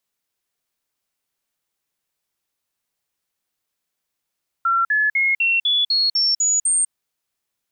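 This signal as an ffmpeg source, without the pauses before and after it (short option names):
-f lavfi -i "aevalsrc='0.178*clip(min(mod(t,0.25),0.2-mod(t,0.25))/0.005,0,1)*sin(2*PI*1360*pow(2,floor(t/0.25)/3)*mod(t,0.25))':d=2.25:s=44100"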